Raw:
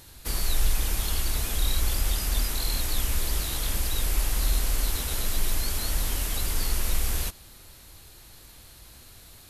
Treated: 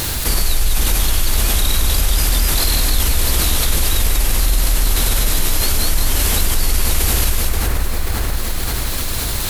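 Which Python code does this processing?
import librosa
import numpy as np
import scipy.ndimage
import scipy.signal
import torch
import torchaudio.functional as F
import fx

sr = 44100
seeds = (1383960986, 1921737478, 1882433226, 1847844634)

p1 = fx.quant_dither(x, sr, seeds[0], bits=8, dither='triangular')
p2 = x + F.gain(torch.from_numpy(p1), -6.0).numpy()
p3 = fx.echo_split(p2, sr, split_hz=2200.0, low_ms=532, high_ms=188, feedback_pct=52, wet_db=-5)
p4 = fx.env_flatten(p3, sr, amount_pct=70)
y = F.gain(torch.from_numpy(p4), 1.5).numpy()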